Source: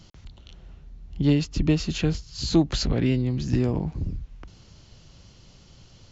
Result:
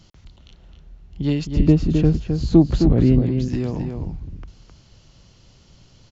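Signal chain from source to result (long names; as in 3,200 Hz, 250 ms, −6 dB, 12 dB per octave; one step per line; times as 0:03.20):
0:01.47–0:03.22: tilt shelving filter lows +9 dB, about 1,100 Hz
slap from a distant wall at 45 metres, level −6 dB
level −1 dB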